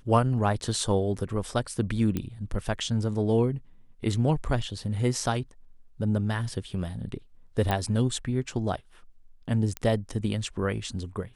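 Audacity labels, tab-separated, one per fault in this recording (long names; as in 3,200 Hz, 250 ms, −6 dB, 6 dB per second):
2.170000	2.170000	click −16 dBFS
7.710000	7.710000	click −13 dBFS
9.770000	9.770000	click −16 dBFS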